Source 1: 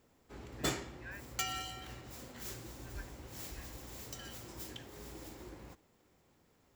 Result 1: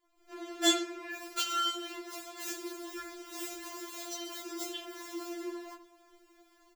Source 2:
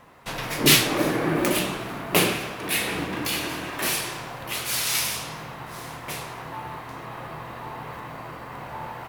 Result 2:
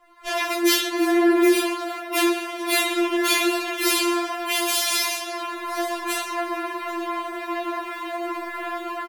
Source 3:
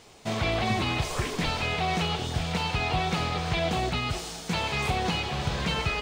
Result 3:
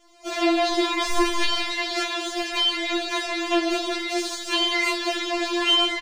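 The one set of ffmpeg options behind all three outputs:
-filter_complex "[0:a]highshelf=f=8000:g=-4.5,dynaudnorm=f=160:g=3:m=5.01,flanger=delay=20:depth=2.7:speed=1.7,asplit=2[s0][s1];[s1]adelay=81,lowpass=f=2000:p=1,volume=0.2,asplit=2[s2][s3];[s3]adelay=81,lowpass=f=2000:p=1,volume=0.55,asplit=2[s4][s5];[s5]adelay=81,lowpass=f=2000:p=1,volume=0.55,asplit=2[s6][s7];[s7]adelay=81,lowpass=f=2000:p=1,volume=0.55,asplit=2[s8][s9];[s9]adelay=81,lowpass=f=2000:p=1,volume=0.55,asplit=2[s10][s11];[s11]adelay=81,lowpass=f=2000:p=1,volume=0.55[s12];[s2][s4][s6][s8][s10][s12]amix=inputs=6:normalize=0[s13];[s0][s13]amix=inputs=2:normalize=0,afftfilt=real='re*4*eq(mod(b,16),0)':imag='im*4*eq(mod(b,16),0)':win_size=2048:overlap=0.75"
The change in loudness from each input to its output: +8.0 LU, +1.5 LU, +5.0 LU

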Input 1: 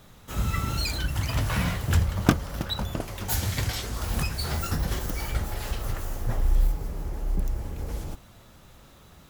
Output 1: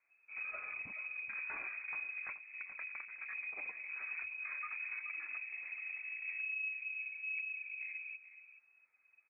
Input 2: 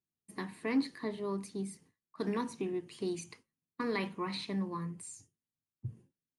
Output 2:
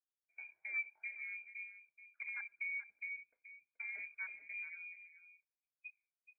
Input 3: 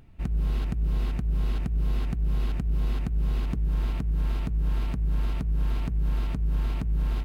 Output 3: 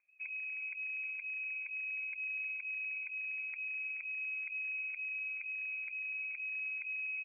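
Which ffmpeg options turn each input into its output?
-af "afwtdn=0.0224,highpass=f=47:p=1,equalizer=f=320:t=o:w=0.7:g=5,acompressor=threshold=0.0398:ratio=5,aeval=exprs='0.0531*(abs(mod(val(0)/0.0531+3,4)-2)-1)':c=same,flanger=delay=1.9:depth=2.5:regen=69:speed=0.44:shape=triangular,aecho=1:1:428:0.237,lowpass=f=2200:t=q:w=0.5098,lowpass=f=2200:t=q:w=0.6013,lowpass=f=2200:t=q:w=0.9,lowpass=f=2200:t=q:w=2.563,afreqshift=-2600,volume=0.501"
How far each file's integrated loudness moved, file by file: -12.0 LU, -6.0 LU, -8.5 LU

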